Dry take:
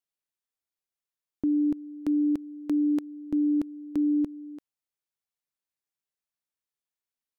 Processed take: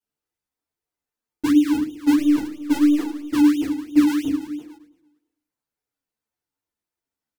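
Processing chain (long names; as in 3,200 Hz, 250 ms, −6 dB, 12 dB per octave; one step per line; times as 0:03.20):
0:02.18–0:03.29: gain on one half-wave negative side −3 dB
on a send: repeating echo 111 ms, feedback 58%, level −15 dB
on the sum: feedback delay network reverb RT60 0.47 s, low-frequency decay 1.45×, high-frequency decay 0.4×, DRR −8.5 dB
in parallel at −9 dB: sample-and-hold swept by an LFO 26×, swing 100% 3 Hz
on the sum: mains-hum notches 50/100/150/200/250/300 Hz
string-ensemble chorus
level −1.5 dB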